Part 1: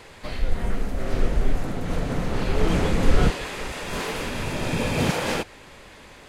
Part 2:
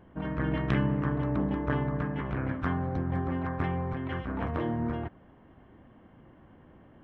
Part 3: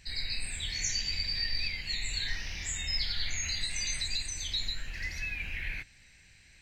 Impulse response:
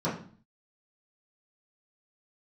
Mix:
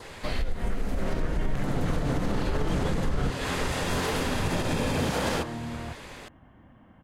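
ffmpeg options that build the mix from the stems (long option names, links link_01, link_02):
-filter_complex "[0:a]acompressor=threshold=-24dB:ratio=6,alimiter=limit=-21dB:level=0:latency=1:release=49,volume=3dB[link_01];[1:a]equalizer=frequency=400:width=2.2:gain=-8.5,adelay=850,volume=2dB,asoftclip=type=hard:threshold=-22.5dB,acompressor=threshold=-32dB:ratio=6,volume=0dB[link_02];[link_01][link_02]amix=inputs=2:normalize=0,adynamicequalizer=threshold=0.00355:dfrequency=2400:dqfactor=3.6:tfrequency=2400:tqfactor=3.6:attack=5:release=100:ratio=0.375:range=2.5:mode=cutabove:tftype=bell"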